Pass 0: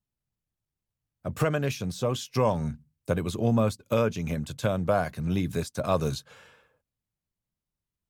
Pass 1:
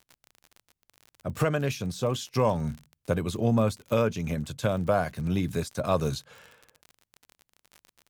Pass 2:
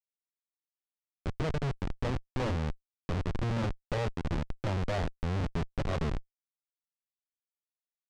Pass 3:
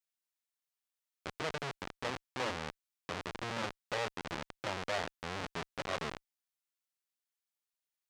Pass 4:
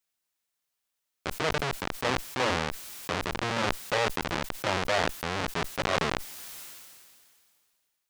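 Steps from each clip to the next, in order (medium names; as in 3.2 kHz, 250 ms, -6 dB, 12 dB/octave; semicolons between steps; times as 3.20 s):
crackle 45 per s -36 dBFS
Schmitt trigger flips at -26 dBFS; distance through air 110 m
high-pass 1.1 kHz 6 dB/octave; trim +3.5 dB
decay stretcher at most 27 dB/s; trim +8.5 dB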